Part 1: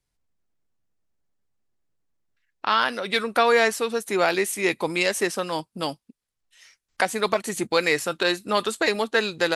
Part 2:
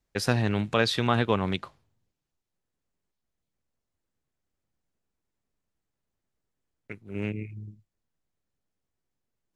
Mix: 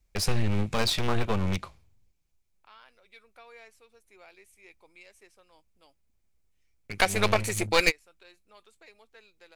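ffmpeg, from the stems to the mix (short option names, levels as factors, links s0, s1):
-filter_complex "[0:a]volume=1.12[s0];[1:a]bass=f=250:g=14,treble=f=4000:g=5,volume=1.06,asplit=2[s1][s2];[s2]apad=whole_len=421483[s3];[s0][s3]sidechaingate=range=0.0224:threshold=0.00355:ratio=16:detection=peak[s4];[s4][s1]amix=inputs=2:normalize=0,equalizer=f=2300:w=4.2:g=11.5,aeval=exprs='clip(val(0),-1,0.0596)':c=same,equalizer=f=125:t=o:w=1:g=-11,equalizer=f=250:t=o:w=1:g=-5,equalizer=f=2000:t=o:w=1:g=-4"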